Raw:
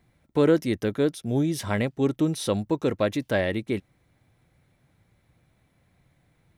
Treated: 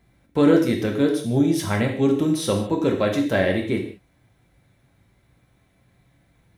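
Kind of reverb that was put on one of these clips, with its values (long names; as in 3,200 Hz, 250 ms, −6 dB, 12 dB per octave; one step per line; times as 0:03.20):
reverb whose tail is shaped and stops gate 220 ms falling, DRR 1 dB
level +1.5 dB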